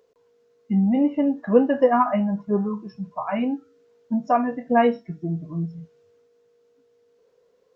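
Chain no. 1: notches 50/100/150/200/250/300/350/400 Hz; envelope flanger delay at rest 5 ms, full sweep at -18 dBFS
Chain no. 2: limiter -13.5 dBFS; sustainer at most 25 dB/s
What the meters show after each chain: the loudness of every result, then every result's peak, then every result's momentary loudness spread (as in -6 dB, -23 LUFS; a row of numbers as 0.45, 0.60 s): -24.5, -23.5 LUFS; -6.0, -9.5 dBFS; 12, 11 LU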